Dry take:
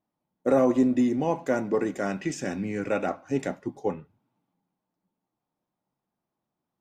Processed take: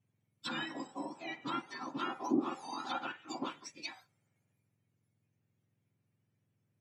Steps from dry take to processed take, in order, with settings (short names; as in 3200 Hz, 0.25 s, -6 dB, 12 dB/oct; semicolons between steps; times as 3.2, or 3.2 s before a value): spectrum mirrored in octaves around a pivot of 1400 Hz; treble ducked by the level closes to 1400 Hz, closed at -29.5 dBFS; high shelf 2400 Hz -9.5 dB; gain +3.5 dB